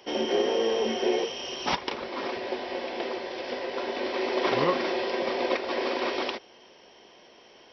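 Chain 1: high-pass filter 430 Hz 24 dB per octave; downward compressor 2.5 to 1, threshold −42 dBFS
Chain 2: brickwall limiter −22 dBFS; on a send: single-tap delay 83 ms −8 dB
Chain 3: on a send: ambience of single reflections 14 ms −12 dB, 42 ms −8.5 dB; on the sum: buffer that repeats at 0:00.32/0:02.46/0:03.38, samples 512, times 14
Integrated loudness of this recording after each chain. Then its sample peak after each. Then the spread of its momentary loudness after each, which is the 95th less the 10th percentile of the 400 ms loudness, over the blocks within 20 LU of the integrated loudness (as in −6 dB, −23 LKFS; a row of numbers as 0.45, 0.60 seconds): −40.0, −31.0, −28.0 LKFS; −25.0, −19.0, −11.5 dBFS; 14, 4, 8 LU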